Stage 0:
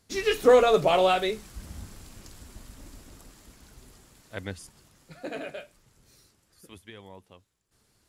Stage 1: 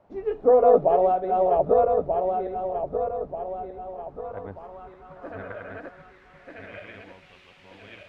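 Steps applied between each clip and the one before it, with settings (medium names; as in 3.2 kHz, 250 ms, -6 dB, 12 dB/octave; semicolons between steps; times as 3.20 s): backward echo that repeats 618 ms, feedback 64%, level -1 dB; word length cut 8-bit, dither triangular; low-pass sweep 720 Hz -> 2.6 kHz, 3.76–7.39 s; trim -4.5 dB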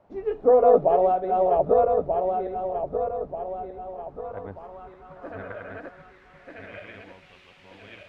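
no audible change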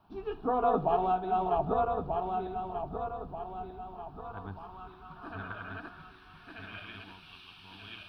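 treble shelf 2.3 kHz +9 dB; static phaser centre 2 kHz, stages 6; on a send at -17 dB: reverberation RT60 1.7 s, pre-delay 21 ms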